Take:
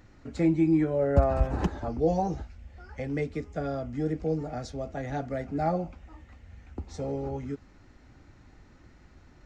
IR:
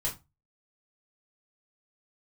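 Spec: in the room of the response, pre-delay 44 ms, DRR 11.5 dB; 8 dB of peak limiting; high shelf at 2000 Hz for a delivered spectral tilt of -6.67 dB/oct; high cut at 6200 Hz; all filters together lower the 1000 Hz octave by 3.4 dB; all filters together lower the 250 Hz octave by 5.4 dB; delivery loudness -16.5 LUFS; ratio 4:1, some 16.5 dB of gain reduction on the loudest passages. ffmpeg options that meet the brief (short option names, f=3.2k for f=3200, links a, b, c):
-filter_complex "[0:a]lowpass=6.2k,equalizer=f=250:t=o:g=-8,equalizer=f=1k:t=o:g=-3.5,highshelf=f=2k:g=-4.5,acompressor=threshold=-38dB:ratio=4,alimiter=level_in=9.5dB:limit=-24dB:level=0:latency=1,volume=-9.5dB,asplit=2[a][b];[1:a]atrim=start_sample=2205,adelay=44[c];[b][c]afir=irnorm=-1:irlink=0,volume=-15.5dB[d];[a][d]amix=inputs=2:normalize=0,volume=27dB"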